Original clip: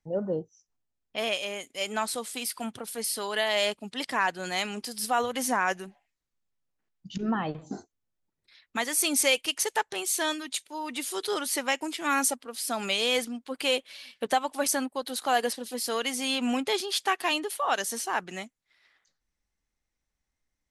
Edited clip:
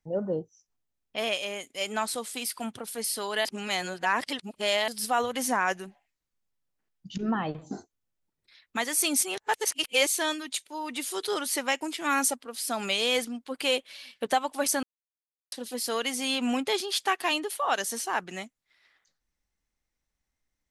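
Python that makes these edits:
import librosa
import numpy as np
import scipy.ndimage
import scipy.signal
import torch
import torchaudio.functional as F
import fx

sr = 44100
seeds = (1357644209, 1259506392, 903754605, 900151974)

y = fx.edit(x, sr, fx.reverse_span(start_s=3.45, length_s=1.43),
    fx.reverse_span(start_s=9.23, length_s=0.84),
    fx.silence(start_s=14.83, length_s=0.69), tone=tone)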